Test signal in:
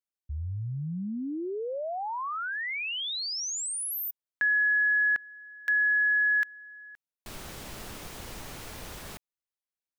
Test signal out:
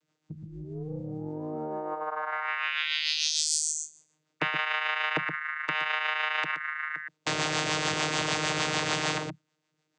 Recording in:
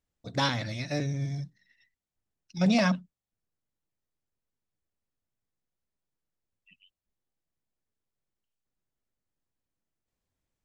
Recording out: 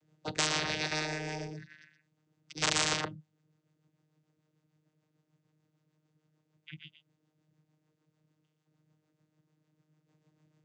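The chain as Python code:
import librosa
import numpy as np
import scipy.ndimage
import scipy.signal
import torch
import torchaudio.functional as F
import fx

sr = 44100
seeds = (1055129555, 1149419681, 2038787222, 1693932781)

p1 = (np.mod(10.0 ** (18.0 / 20.0) * x + 1.0, 2.0) - 1.0) / 10.0 ** (18.0 / 20.0)
p2 = fx.rotary(p1, sr, hz=6.7)
p3 = p2 + fx.echo_single(p2, sr, ms=121, db=-10.5, dry=0)
p4 = fx.vocoder(p3, sr, bands=16, carrier='saw', carrier_hz=154.0)
p5 = fx.spectral_comp(p4, sr, ratio=10.0)
y = F.gain(torch.from_numpy(p5), 6.0).numpy()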